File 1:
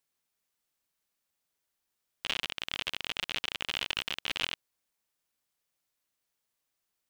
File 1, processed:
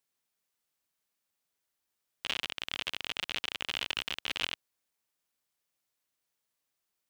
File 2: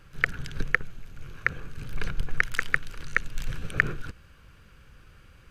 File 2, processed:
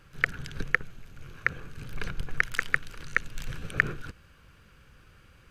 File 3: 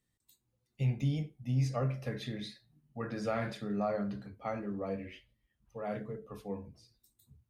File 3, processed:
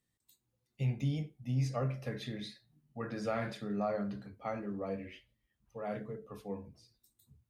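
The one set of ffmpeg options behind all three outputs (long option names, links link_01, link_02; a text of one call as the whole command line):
ffmpeg -i in.wav -af "lowshelf=frequency=62:gain=-5.5,volume=-1dB" out.wav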